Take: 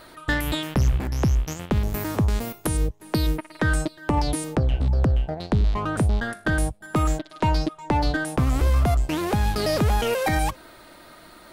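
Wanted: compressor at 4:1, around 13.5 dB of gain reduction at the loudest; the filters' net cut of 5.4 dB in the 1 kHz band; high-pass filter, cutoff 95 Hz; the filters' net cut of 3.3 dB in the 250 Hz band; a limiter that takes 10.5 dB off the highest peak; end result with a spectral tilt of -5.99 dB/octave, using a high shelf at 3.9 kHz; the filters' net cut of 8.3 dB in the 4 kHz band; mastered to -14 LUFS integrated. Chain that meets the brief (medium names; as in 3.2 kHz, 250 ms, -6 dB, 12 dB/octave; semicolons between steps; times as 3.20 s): high-pass 95 Hz; peaking EQ 250 Hz -4 dB; peaking EQ 1 kHz -6 dB; treble shelf 3.9 kHz -7 dB; peaking EQ 4 kHz -6 dB; compression 4:1, threshold -37 dBFS; trim +28 dB; peak limiter -3 dBFS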